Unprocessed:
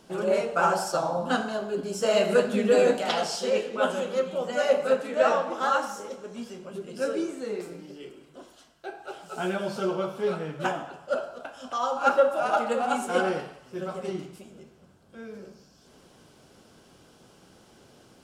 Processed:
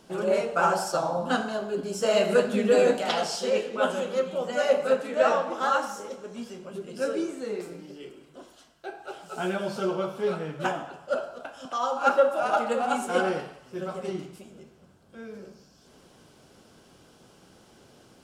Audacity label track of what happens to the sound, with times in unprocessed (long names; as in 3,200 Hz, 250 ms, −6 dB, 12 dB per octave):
11.650000	12.530000	high-pass filter 140 Hz 24 dB per octave